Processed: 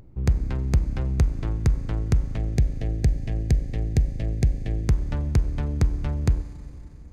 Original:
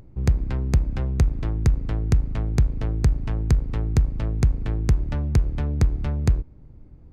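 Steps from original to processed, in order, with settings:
gain on a spectral selection 0:02.36–0:04.87, 800–1,600 Hz −15 dB
four-comb reverb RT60 3.5 s, combs from 31 ms, DRR 14 dB
level −1.5 dB

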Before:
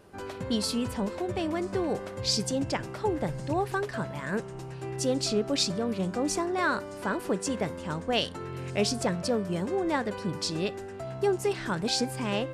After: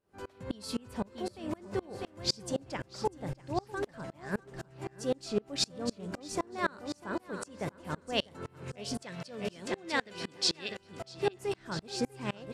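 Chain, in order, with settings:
0:09.02–0:10.78: meter weighting curve D
repeating echo 647 ms, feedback 34%, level −8 dB
tremolo with a ramp in dB swelling 3.9 Hz, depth 30 dB

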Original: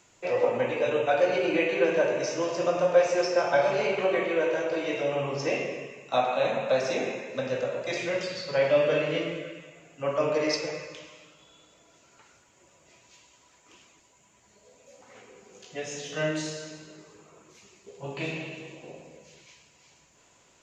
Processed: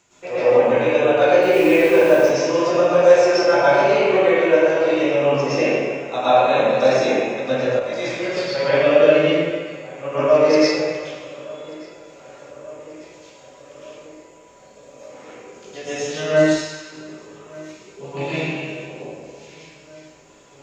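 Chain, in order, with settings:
0:01.42–0:02.18: hold until the input has moved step −38 dBFS
0:16.40–0:16.82: high-pass filter 770 Hz 24 dB per octave
feedback echo with a low-pass in the loop 1,186 ms, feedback 69%, low-pass 3,300 Hz, level −22 dB
convolution reverb RT60 0.85 s, pre-delay 104 ms, DRR −10.5 dB
0:07.79–0:08.37: micro pitch shift up and down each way 21 cents
level −1 dB

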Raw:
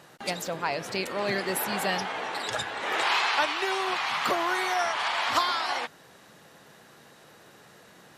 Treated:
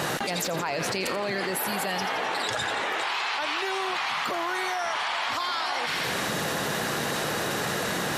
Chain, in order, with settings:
on a send: delay with a high-pass on its return 85 ms, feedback 56%, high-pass 1,600 Hz, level −11 dB
on the sum: envelope flattener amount 100%
level −8 dB

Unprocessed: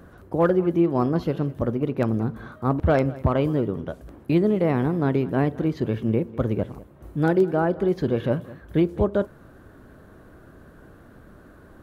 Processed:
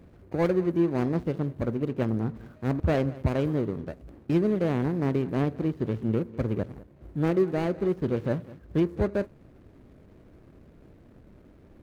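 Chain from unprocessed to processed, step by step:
running median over 41 samples
level −3.5 dB

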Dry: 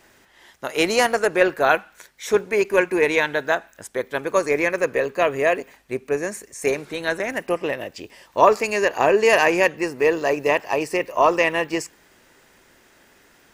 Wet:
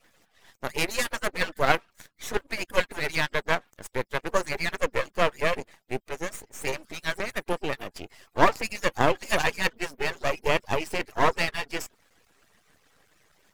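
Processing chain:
harmonic-percussive split with one part muted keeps percussive
half-wave rectification

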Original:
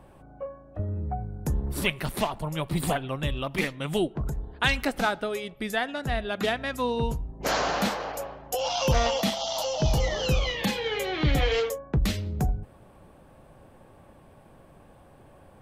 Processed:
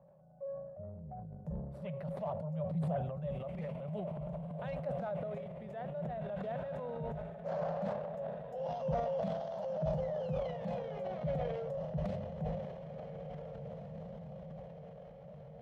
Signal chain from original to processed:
pair of resonant band-passes 310 Hz, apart 1.8 octaves
on a send: feedback delay with all-pass diffusion 1,900 ms, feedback 50%, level −8 dB
on the sum: transient designer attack −4 dB, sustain +9 dB
level that may fall only so fast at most 44 dB per second
level −2.5 dB

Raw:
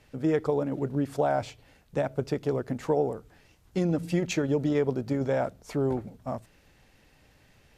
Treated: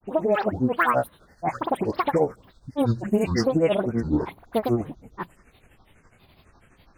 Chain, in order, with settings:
gliding playback speed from 153% → 70%
brick-wall band-stop 2,900–6,200 Hz
all-pass dispersion highs, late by 100 ms, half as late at 1,900 Hz
granular cloud 131 ms, grains 12 per second, pitch spread up and down by 12 semitones
level +6.5 dB

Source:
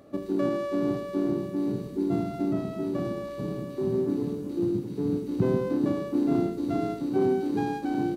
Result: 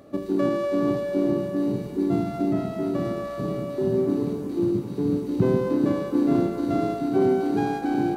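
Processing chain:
delay with a band-pass on its return 242 ms, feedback 71%, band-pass 1,200 Hz, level −7.5 dB
level +3.5 dB

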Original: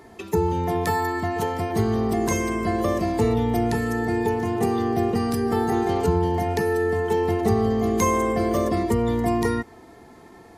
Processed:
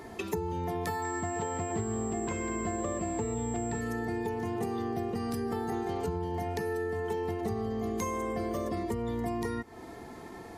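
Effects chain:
downward compressor 6 to 1, threshold −33 dBFS, peak gain reduction 16 dB
0:01.02–0:03.81: switching amplifier with a slow clock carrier 7,600 Hz
level +2 dB

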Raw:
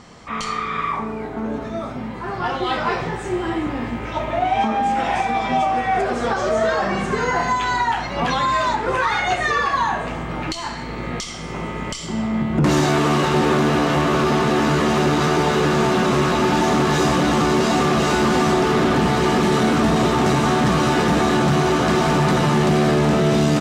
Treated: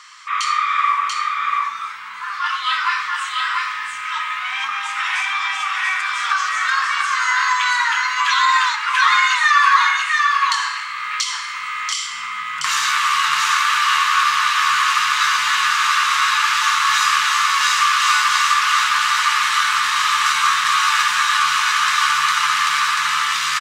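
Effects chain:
elliptic high-pass filter 1,100 Hz, stop band 40 dB
single-tap delay 688 ms −3 dB
level +7 dB

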